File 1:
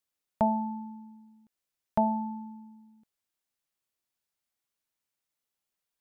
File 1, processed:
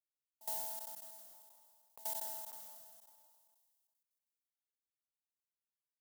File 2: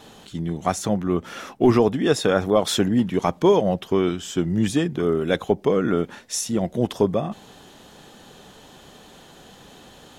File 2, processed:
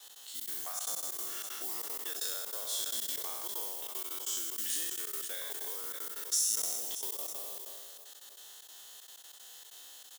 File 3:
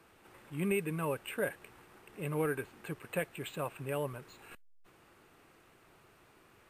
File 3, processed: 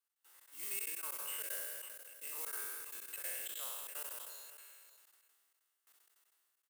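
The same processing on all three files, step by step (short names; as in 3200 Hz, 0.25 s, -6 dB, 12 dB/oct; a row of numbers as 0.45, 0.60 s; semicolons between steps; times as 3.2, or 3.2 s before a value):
spectral trails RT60 1.77 s; modulation noise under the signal 16 dB; step gate "x.xxx.xxxx.x." 190 bpm -24 dB; HPF 310 Hz 12 dB/oct; compressor 6:1, threshold -26 dBFS; differentiator; notch 2400 Hz, Q 6.8; echo 0.544 s -20.5 dB; gate with hold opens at -56 dBFS; sustainer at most 25 dB/s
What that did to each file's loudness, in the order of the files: -11.5, -12.0, -4.0 LU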